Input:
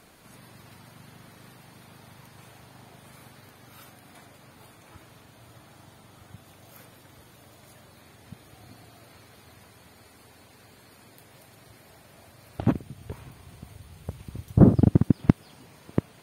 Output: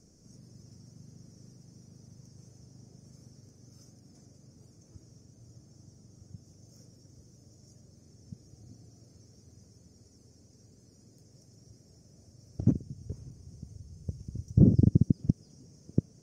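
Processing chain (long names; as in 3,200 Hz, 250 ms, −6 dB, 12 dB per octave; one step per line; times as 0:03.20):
drawn EQ curve 170 Hz 0 dB, 500 Hz −8 dB, 920 Hz −25 dB, 1,300 Hz −24 dB, 2,200 Hz −26 dB, 3,900 Hz −27 dB, 5,600 Hz +7 dB, 11,000 Hz −23 dB
brickwall limiter −10 dBFS, peak gain reduction 7 dB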